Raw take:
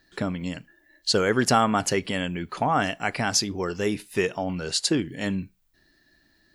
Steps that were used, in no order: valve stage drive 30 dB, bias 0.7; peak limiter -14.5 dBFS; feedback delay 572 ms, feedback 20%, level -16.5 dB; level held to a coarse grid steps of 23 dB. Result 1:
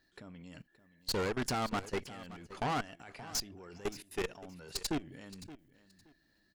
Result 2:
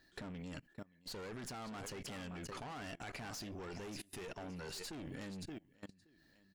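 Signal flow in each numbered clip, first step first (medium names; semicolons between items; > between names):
level held to a coarse grid > peak limiter > valve stage > feedback delay; feedback delay > peak limiter > valve stage > level held to a coarse grid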